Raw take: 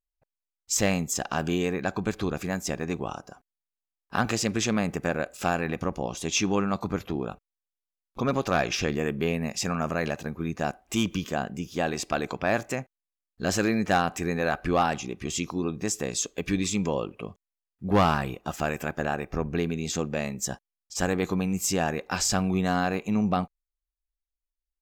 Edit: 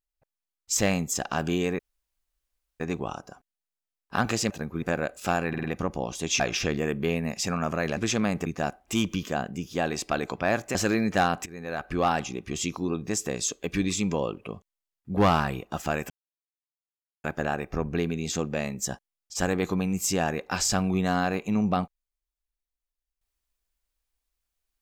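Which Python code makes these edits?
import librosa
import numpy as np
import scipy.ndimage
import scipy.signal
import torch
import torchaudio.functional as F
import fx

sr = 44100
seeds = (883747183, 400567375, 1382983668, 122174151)

y = fx.edit(x, sr, fx.room_tone_fill(start_s=1.79, length_s=1.01),
    fx.swap(start_s=4.5, length_s=0.49, other_s=10.15, other_length_s=0.32),
    fx.stutter(start_s=5.66, slice_s=0.05, count=4),
    fx.cut(start_s=6.42, length_s=2.16),
    fx.cut(start_s=12.76, length_s=0.73),
    fx.fade_in_from(start_s=14.2, length_s=0.67, floor_db=-19.5),
    fx.insert_silence(at_s=18.84, length_s=1.14), tone=tone)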